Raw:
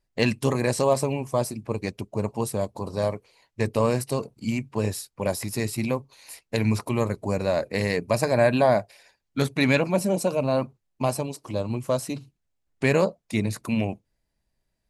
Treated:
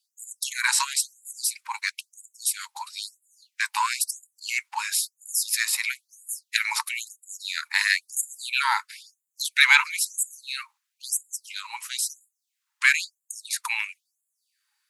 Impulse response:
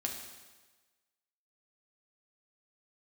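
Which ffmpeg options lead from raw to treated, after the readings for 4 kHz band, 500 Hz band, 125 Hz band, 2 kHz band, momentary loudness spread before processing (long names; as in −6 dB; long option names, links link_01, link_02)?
+8.5 dB, below −40 dB, below −40 dB, +8.5 dB, 10 LU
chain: -af "acontrast=28,afreqshift=-120,afftfilt=real='re*gte(b*sr/1024,800*pow(6900/800,0.5+0.5*sin(2*PI*1*pts/sr)))':imag='im*gte(b*sr/1024,800*pow(6900/800,0.5+0.5*sin(2*PI*1*pts/sr)))':win_size=1024:overlap=0.75,volume=5.5dB"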